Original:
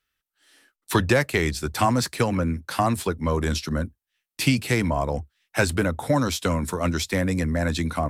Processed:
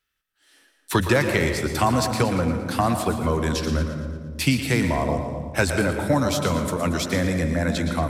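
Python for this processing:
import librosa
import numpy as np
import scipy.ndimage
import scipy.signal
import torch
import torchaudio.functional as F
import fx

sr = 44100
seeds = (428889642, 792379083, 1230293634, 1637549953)

y = fx.echo_split(x, sr, split_hz=310.0, low_ms=283, high_ms=115, feedback_pct=52, wet_db=-10.0)
y = fx.rev_freeverb(y, sr, rt60_s=1.6, hf_ratio=0.25, predelay_ms=100, drr_db=7.5)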